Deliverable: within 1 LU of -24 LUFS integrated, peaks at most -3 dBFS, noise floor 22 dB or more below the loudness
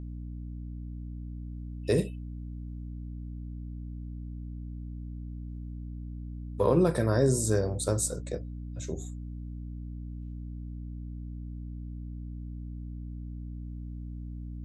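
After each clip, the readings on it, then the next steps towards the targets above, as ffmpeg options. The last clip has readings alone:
hum 60 Hz; harmonics up to 300 Hz; hum level -36 dBFS; loudness -34.0 LUFS; peak -12.0 dBFS; loudness target -24.0 LUFS
-> -af "bandreject=f=60:t=h:w=6,bandreject=f=120:t=h:w=6,bandreject=f=180:t=h:w=6,bandreject=f=240:t=h:w=6,bandreject=f=300:t=h:w=6"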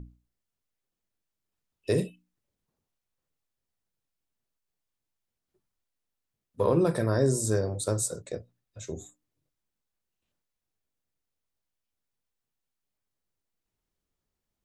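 hum none; loudness -27.5 LUFS; peak -12.5 dBFS; loudness target -24.0 LUFS
-> -af "volume=3.5dB"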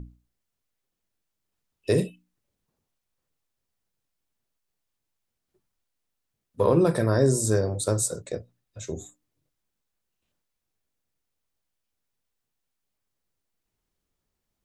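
loudness -24.0 LUFS; peak -9.0 dBFS; noise floor -82 dBFS

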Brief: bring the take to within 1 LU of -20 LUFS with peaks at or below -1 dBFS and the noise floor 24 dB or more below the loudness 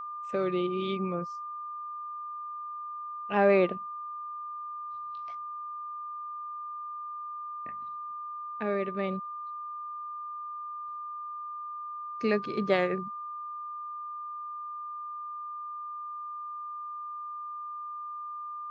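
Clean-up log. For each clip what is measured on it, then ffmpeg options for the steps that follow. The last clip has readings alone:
steady tone 1200 Hz; tone level -36 dBFS; loudness -34.5 LUFS; peak -11.5 dBFS; loudness target -20.0 LUFS
-> -af "bandreject=f=1.2k:w=30"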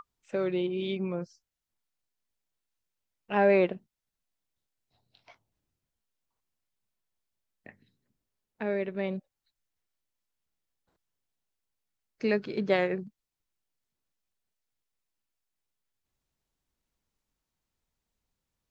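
steady tone none; loudness -29.5 LUFS; peak -12.0 dBFS; loudness target -20.0 LUFS
-> -af "volume=9.5dB"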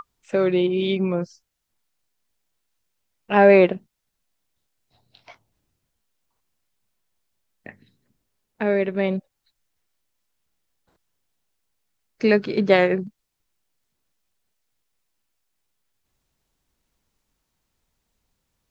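loudness -20.0 LUFS; peak -2.5 dBFS; noise floor -77 dBFS

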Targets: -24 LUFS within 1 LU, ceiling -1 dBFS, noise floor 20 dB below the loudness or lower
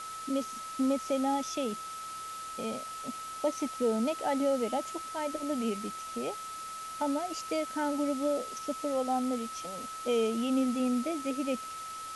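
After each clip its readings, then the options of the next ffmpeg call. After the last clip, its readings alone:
steady tone 1300 Hz; tone level -39 dBFS; noise floor -41 dBFS; noise floor target -53 dBFS; loudness -33.0 LUFS; peak -19.0 dBFS; loudness target -24.0 LUFS
-> -af "bandreject=f=1.3k:w=30"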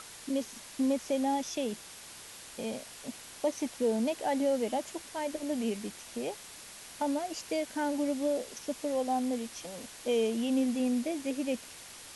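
steady tone none; noise floor -49 dBFS; noise floor target -53 dBFS
-> -af "afftdn=nr=6:nf=-49"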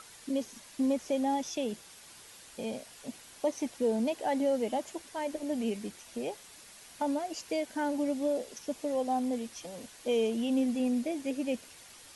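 noise floor -53 dBFS; loudness -33.0 LUFS; peak -20.0 dBFS; loudness target -24.0 LUFS
-> -af "volume=9dB"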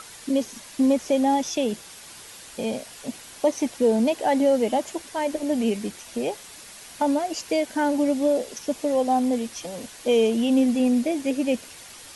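loudness -24.0 LUFS; peak -11.0 dBFS; noise floor -44 dBFS

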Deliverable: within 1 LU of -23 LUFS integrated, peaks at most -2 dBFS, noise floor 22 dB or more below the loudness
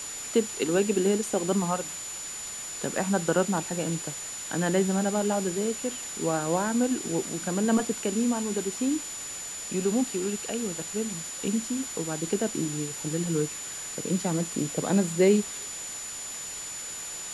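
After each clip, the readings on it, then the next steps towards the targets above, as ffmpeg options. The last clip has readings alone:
steady tone 7000 Hz; tone level -36 dBFS; noise floor -37 dBFS; noise floor target -50 dBFS; loudness -28.0 LUFS; peak -10.5 dBFS; loudness target -23.0 LUFS
-> -af "bandreject=f=7k:w=30"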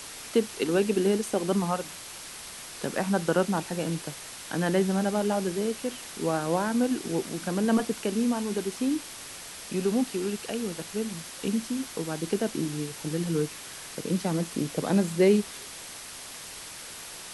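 steady tone none; noise floor -42 dBFS; noise floor target -51 dBFS
-> -af "afftdn=nr=9:nf=-42"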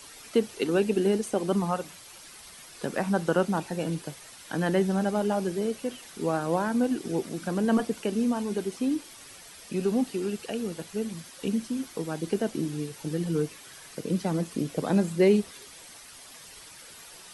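noise floor -48 dBFS; noise floor target -51 dBFS
-> -af "afftdn=nr=6:nf=-48"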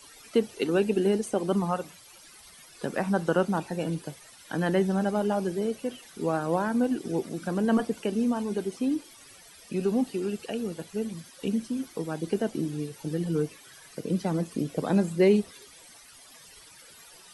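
noise floor -52 dBFS; loudness -28.5 LUFS; peak -11.0 dBFS; loudness target -23.0 LUFS
-> -af "volume=5.5dB"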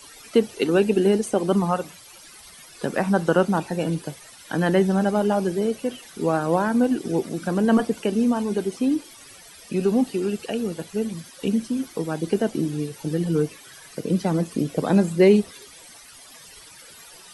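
loudness -23.0 LUFS; peak -5.5 dBFS; noise floor -46 dBFS

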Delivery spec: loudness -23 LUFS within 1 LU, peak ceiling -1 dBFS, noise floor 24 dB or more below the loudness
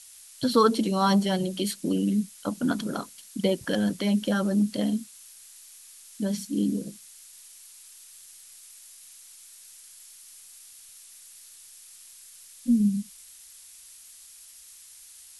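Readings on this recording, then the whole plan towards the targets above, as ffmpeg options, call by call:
noise floor -50 dBFS; noise floor target -51 dBFS; loudness -26.5 LUFS; peak -9.0 dBFS; loudness target -23.0 LUFS
-> -af "afftdn=nr=6:nf=-50"
-af "volume=3.5dB"

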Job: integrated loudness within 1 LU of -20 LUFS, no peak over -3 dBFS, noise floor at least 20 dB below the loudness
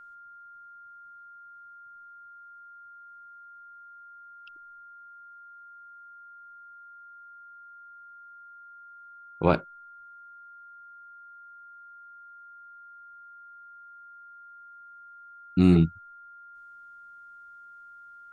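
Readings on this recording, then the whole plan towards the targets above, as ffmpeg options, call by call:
steady tone 1400 Hz; tone level -46 dBFS; loudness -24.0 LUFS; peak -5.5 dBFS; loudness target -20.0 LUFS
-> -af "bandreject=f=1.4k:w=30"
-af "volume=4dB,alimiter=limit=-3dB:level=0:latency=1"

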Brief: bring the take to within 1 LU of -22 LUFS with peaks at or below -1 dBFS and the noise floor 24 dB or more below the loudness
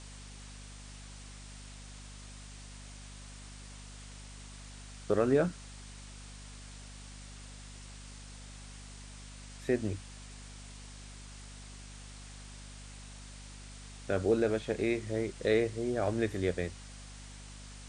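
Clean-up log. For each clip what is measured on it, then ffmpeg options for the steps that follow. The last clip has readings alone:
hum 50 Hz; harmonics up to 250 Hz; hum level -47 dBFS; noise floor -48 dBFS; noise floor target -56 dBFS; loudness -32.0 LUFS; peak -15.0 dBFS; loudness target -22.0 LUFS
-> -af "bandreject=f=50:t=h:w=6,bandreject=f=100:t=h:w=6,bandreject=f=150:t=h:w=6,bandreject=f=200:t=h:w=6,bandreject=f=250:t=h:w=6"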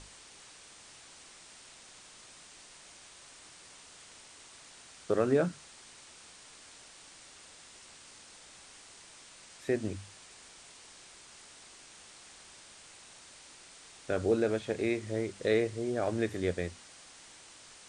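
hum none; noise floor -54 dBFS; noise floor target -56 dBFS
-> -af "afftdn=nr=6:nf=-54"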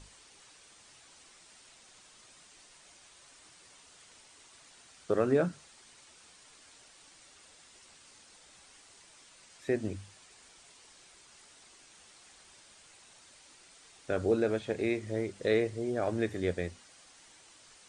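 noise floor -58 dBFS; loudness -32.0 LUFS; peak -15.5 dBFS; loudness target -22.0 LUFS
-> -af "volume=10dB"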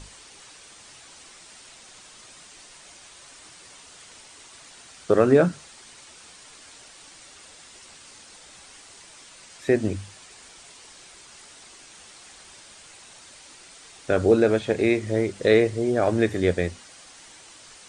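loudness -22.0 LUFS; peak -5.5 dBFS; noise floor -48 dBFS

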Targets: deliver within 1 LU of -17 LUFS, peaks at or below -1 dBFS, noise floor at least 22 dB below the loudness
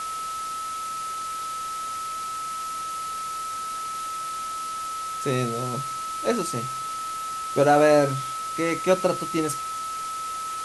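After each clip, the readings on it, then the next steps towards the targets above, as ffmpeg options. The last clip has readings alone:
steady tone 1300 Hz; tone level -29 dBFS; noise floor -32 dBFS; noise floor target -49 dBFS; loudness -26.5 LUFS; peak -7.0 dBFS; loudness target -17.0 LUFS
-> -af "bandreject=f=1.3k:w=30"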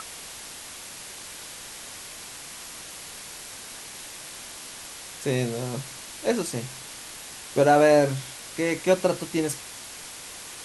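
steady tone none; noise floor -41 dBFS; noise floor target -51 dBFS
-> -af "afftdn=nr=10:nf=-41"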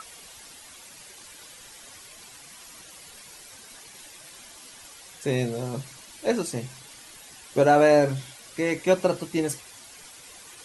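noise floor -47 dBFS; loudness -24.5 LUFS; peak -7.0 dBFS; loudness target -17.0 LUFS
-> -af "volume=7.5dB,alimiter=limit=-1dB:level=0:latency=1"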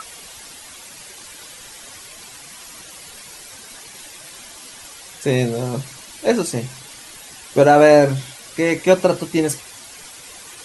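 loudness -17.5 LUFS; peak -1.0 dBFS; noise floor -40 dBFS

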